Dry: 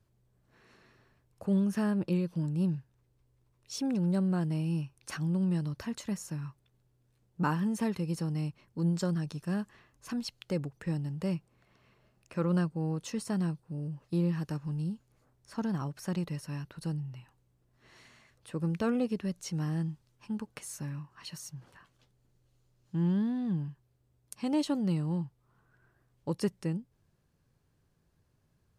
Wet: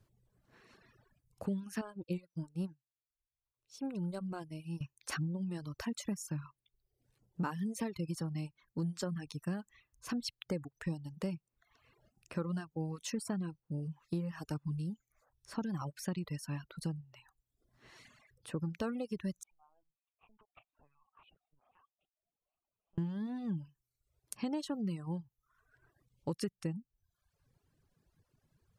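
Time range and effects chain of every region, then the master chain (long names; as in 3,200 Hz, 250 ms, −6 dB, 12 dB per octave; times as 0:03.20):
0:01.81–0:04.81: parametric band 210 Hz −3 dB 1.1 octaves + notch filter 1,800 Hz, Q 5.3 + expander for the loud parts 2.5 to 1, over −41 dBFS
0:19.43–0:22.98: downward compressor 20 to 1, threshold −40 dBFS + formant filter a + linear-prediction vocoder at 8 kHz pitch kept
whole clip: reverb reduction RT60 0.85 s; downward compressor 6 to 1, threshold −34 dBFS; reverb reduction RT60 0.75 s; level +1.5 dB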